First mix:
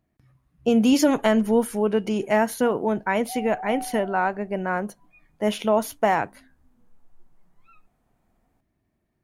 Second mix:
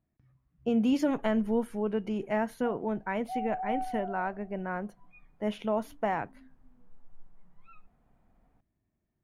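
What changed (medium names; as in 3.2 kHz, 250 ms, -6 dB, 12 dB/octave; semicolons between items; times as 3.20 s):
speech -9.5 dB; master: add tone controls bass +4 dB, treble -11 dB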